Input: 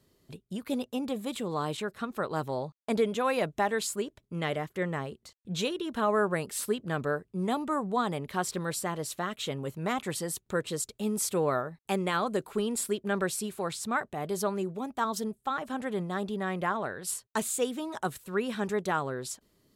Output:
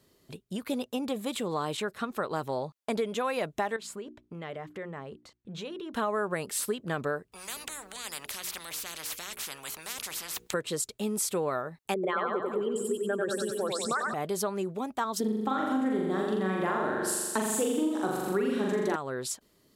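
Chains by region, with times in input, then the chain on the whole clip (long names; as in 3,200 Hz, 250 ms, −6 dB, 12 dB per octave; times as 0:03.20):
0:03.76–0:05.94: low-pass filter 2,100 Hz 6 dB per octave + mains-hum notches 60/120/180/240/300/360 Hz + downward compressor 4 to 1, threshold −39 dBFS
0:07.32–0:10.54: mains-hum notches 60/120/180/240/300/360/420/480 Hz + every bin compressed towards the loudest bin 10 to 1
0:11.94–0:14.14: spectral envelope exaggerated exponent 2 + de-essing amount 75% + echo with a time of its own for lows and highs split 310 Hz, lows 211 ms, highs 93 ms, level −3 dB
0:15.20–0:18.96: parametric band 300 Hz +13.5 dB 0.9 octaves + flutter between parallel walls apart 7.2 metres, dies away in 1.1 s
whole clip: low-shelf EQ 200 Hz −6.5 dB; downward compressor 4 to 1, threshold −31 dBFS; level +4 dB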